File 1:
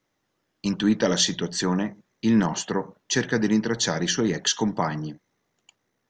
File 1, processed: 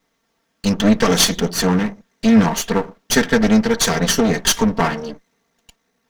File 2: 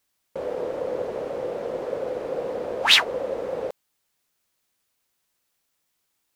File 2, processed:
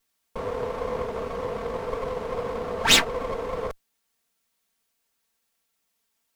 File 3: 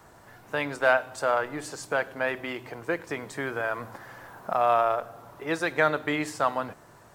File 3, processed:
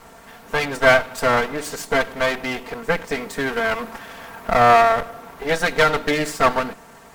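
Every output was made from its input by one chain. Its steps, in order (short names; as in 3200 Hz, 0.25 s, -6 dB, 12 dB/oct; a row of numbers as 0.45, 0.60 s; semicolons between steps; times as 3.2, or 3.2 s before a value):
minimum comb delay 4.4 ms; normalise peaks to -1.5 dBFS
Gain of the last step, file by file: +8.5, +1.0, +10.0 dB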